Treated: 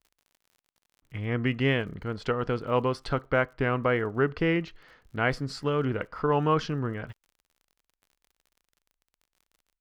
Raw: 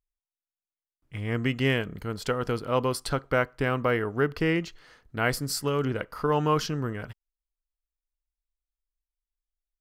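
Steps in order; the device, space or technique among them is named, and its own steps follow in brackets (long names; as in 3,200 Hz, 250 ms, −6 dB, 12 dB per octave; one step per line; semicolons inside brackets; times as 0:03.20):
lo-fi chain (low-pass filter 3,400 Hz 12 dB per octave; tape wow and flutter; surface crackle 45 per second −48 dBFS)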